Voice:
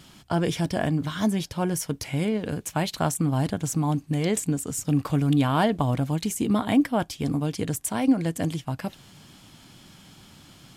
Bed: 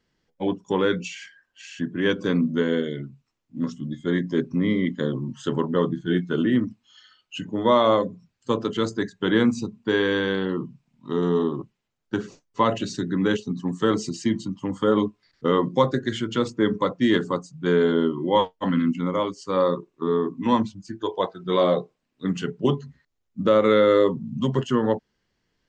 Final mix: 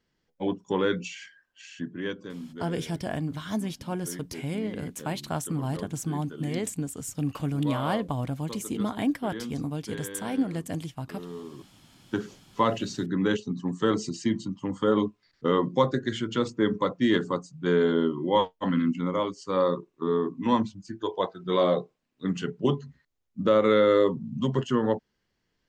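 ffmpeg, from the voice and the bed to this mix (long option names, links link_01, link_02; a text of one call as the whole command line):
ffmpeg -i stem1.wav -i stem2.wav -filter_complex "[0:a]adelay=2300,volume=-6dB[link_01];[1:a]volume=11dB,afade=type=out:start_time=1.53:duration=0.79:silence=0.199526,afade=type=in:start_time=11.5:duration=0.58:silence=0.188365[link_02];[link_01][link_02]amix=inputs=2:normalize=0" out.wav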